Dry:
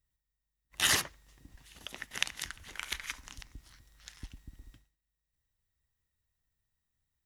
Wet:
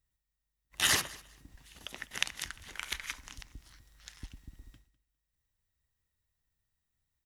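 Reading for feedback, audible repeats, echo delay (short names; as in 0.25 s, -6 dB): no steady repeat, 1, 0.202 s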